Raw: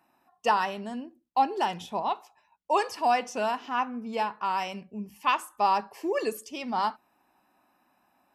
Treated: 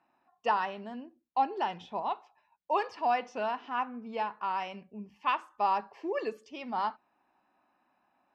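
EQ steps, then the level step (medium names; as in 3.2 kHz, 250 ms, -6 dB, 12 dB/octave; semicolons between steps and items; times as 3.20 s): distance through air 210 m; bass shelf 280 Hz -6 dB; -2.5 dB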